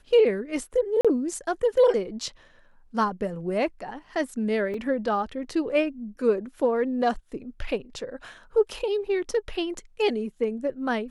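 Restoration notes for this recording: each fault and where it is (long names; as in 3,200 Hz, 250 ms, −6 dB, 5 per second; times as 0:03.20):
0:01.01–0:01.05: drop-out 36 ms
0:04.74: drop-out 2.7 ms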